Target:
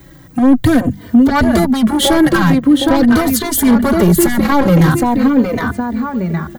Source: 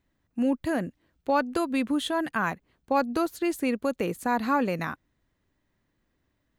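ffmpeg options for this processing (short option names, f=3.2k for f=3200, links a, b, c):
-filter_complex "[0:a]highpass=54,acrossover=split=140[a][b];[b]acompressor=threshold=-36dB:ratio=6[c];[a][c]amix=inputs=2:normalize=0,highshelf=f=11k:g=11.5,asplit=2[d][e];[e]adelay=764,lowpass=f=4k:p=1,volume=-7dB,asplit=2[f][g];[g]adelay=764,lowpass=f=4k:p=1,volume=0.33,asplit=2[h][i];[i]adelay=764,lowpass=f=4k:p=1,volume=0.33,asplit=2[j][k];[k]adelay=764,lowpass=f=4k:p=1,volume=0.33[l];[f][h][j][l]amix=inputs=4:normalize=0[m];[d][m]amix=inputs=2:normalize=0,asoftclip=type=tanh:threshold=-38.5dB,bandreject=f=50:t=h:w=6,bandreject=f=100:t=h:w=6,bandreject=f=150:t=h:w=6,bandreject=f=200:t=h:w=6,asoftclip=type=hard:threshold=-39.5dB,lowshelf=f=280:g=8,bandreject=f=2.6k:w=7,alimiter=level_in=35.5dB:limit=-1dB:release=50:level=0:latency=1,asplit=2[n][o];[o]adelay=3.2,afreqshift=-0.44[p];[n][p]amix=inputs=2:normalize=1,volume=-1.5dB"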